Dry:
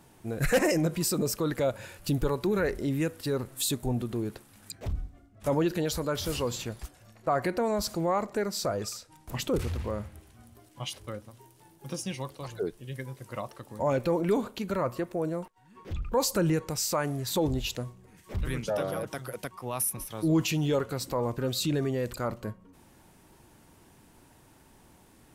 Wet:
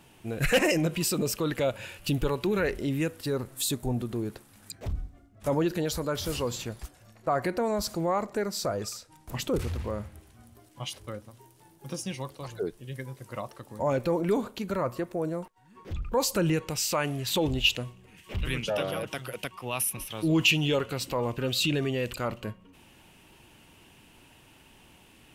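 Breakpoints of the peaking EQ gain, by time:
peaking EQ 2.8 kHz 0.63 oct
2.66 s +10.5 dB
3.33 s 0 dB
16.03 s 0 dB
16.36 s +7.5 dB
16.99 s +14.5 dB

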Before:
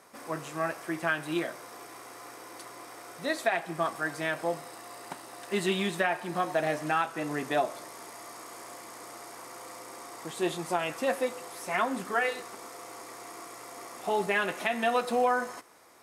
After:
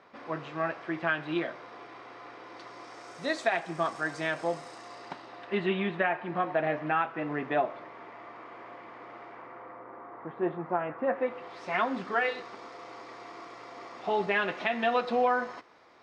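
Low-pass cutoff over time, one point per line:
low-pass 24 dB/octave
2.41 s 3.9 kHz
3.19 s 7.2 kHz
4.70 s 7.2 kHz
5.72 s 2.8 kHz
9.26 s 2.8 kHz
9.84 s 1.7 kHz
11.06 s 1.7 kHz
11.62 s 4.5 kHz

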